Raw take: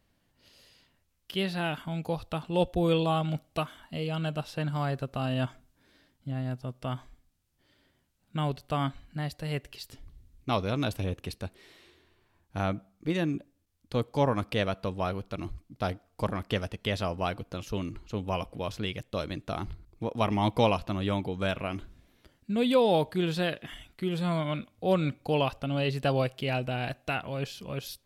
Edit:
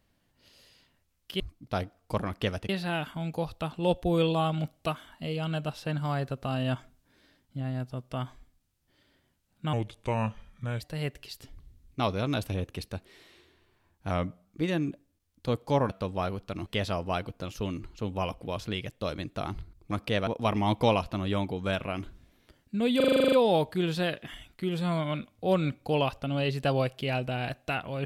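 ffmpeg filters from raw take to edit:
-filter_complex "[0:a]asplit=20[a][b][c][d][e][f][g][h][i][j][k][l][m][n][o][p][q][r][s][t];[a]atrim=end=1.402[u];[b]atrim=start=15.488:end=16.782[v];[c]atrim=start=1.398:end=8.444[w];[d]atrim=start=8.44:end=9.3,asetpts=PTS-STARTPTS,asetrate=35280,aresample=44100[x];[e]atrim=start=9.296:end=12.604[y];[f]atrim=start=12.6:end=12.92,asetpts=PTS-STARTPTS,asetrate=40572,aresample=44100,atrim=end_sample=15339,asetpts=PTS-STARTPTS[z];[g]atrim=start=12.916:end=14.362[aa];[h]atrim=start=14.718:end=15.492[ab];[i]atrim=start=16.778:end=20.032[ac];[j]atrim=start=14.358:end=14.722[ad];[k]atrim=start=20.028:end=22.762[ae];[l]atrim=start=22.718:end=22.762[af];[m]atrim=start=22.718:end=22.762[ag];[n]atrim=start=22.718:end=22.762[ah];[o]atrim=start=22.718:end=22.762[ai];[p]atrim=start=22.718:end=22.762[aj];[q]atrim=start=22.718:end=22.762[ak];[r]atrim=start=22.718:end=22.762[al];[s]atrim=start=22.718:end=22.762[am];[t]atrim=start=22.718[an];[u][v]acrossfade=d=0.004:c1=hsin:c2=hsin[ao];[ao][w]acrossfade=d=0.004:c1=hsin:c2=hsin[ap];[ap][x]acrossfade=d=0.004:c1=hsin:c2=hsin[aq];[aq][y]acrossfade=d=0.004:c1=hsin:c2=hsin[ar];[ar][z]acrossfade=d=0.004:c1=hsin:c2=hsin[as];[as][aa]acrossfade=d=0.004:c1=hsin:c2=hsin[at];[at][ab]acrossfade=d=0.004:c1=hsin:c2=hsin[au];[au][ac]acrossfade=d=0.004:c1=hsin:c2=hsin[av];[av][ad]acrossfade=d=0.004:c1=hsin:c2=hsin[aw];[aw][ae]acrossfade=d=0.004:c1=hsin:c2=hsin[ax];[ax][af]acrossfade=d=0.004:c1=hsin:c2=hsin[ay];[ay][ag]acrossfade=d=0.004:c1=hsin:c2=hsin[az];[az][ah]acrossfade=d=0.004:c1=hsin:c2=hsin[ba];[ba][ai]acrossfade=d=0.004:c1=hsin:c2=hsin[bb];[bb][aj]acrossfade=d=0.004:c1=hsin:c2=hsin[bc];[bc][ak]acrossfade=d=0.004:c1=hsin:c2=hsin[bd];[bd][al]acrossfade=d=0.004:c1=hsin:c2=hsin[be];[be][am]acrossfade=d=0.004:c1=hsin:c2=hsin[bf];[bf][an]acrossfade=d=0.004:c1=hsin:c2=hsin"

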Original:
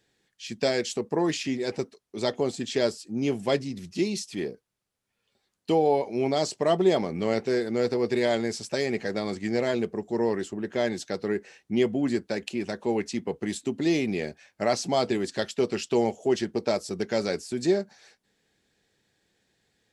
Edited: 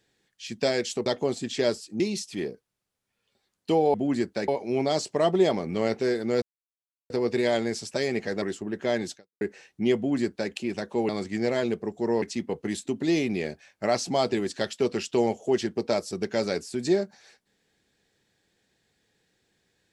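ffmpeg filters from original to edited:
-filter_complex "[0:a]asplit=10[a][b][c][d][e][f][g][h][i][j];[a]atrim=end=1.062[k];[b]atrim=start=2.228:end=3.172[l];[c]atrim=start=3.998:end=5.942[m];[d]atrim=start=11.878:end=12.422[n];[e]atrim=start=5.938:end=7.88,asetpts=PTS-STARTPTS,afade=t=out:st=1.938:d=0.004:c=hsin,apad=pad_dur=0.68[o];[f]atrim=start=7.88:end=9.202,asetpts=PTS-STARTPTS,afade=t=in:d=0.004:c=hsin[p];[g]atrim=start=10.328:end=11.32,asetpts=PTS-STARTPTS,afade=t=out:st=0.732:d=0.26:c=exp[q];[h]atrim=start=11.32:end=13.002,asetpts=PTS-STARTPTS,afade=t=in:d=0.004:c=hsin[r];[i]atrim=start=9.198:end=10.332[s];[j]atrim=start=12.998[t];[k][l]acrossfade=d=0.004:c1=hsin:c2=hsin[u];[u][m]acrossfade=d=0.004:c1=hsin:c2=hsin[v];[v][n]acrossfade=d=0.004:c1=hsin:c2=hsin[w];[o][p]concat=n=2:v=0:a=1[x];[w][x]acrossfade=d=0.004:c1=hsin:c2=hsin[y];[q][r]concat=n=2:v=0:a=1[z];[y][z]acrossfade=d=0.004:c1=hsin:c2=hsin[aa];[aa][s]acrossfade=d=0.004:c1=hsin:c2=hsin[ab];[ab][t]acrossfade=d=0.004:c1=hsin:c2=hsin"

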